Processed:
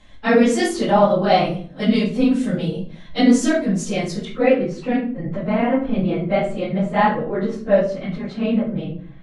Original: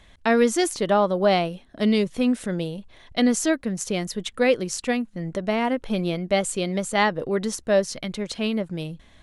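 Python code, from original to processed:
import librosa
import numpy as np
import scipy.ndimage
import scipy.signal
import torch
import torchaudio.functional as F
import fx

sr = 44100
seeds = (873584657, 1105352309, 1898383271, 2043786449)

y = fx.phase_scramble(x, sr, seeds[0], window_ms=50)
y = fx.lowpass(y, sr, hz=fx.steps((0.0, 7600.0), (4.25, 2100.0)), slope=12)
y = fx.room_shoebox(y, sr, seeds[1], volume_m3=430.0, walls='furnished', distance_m=2.1)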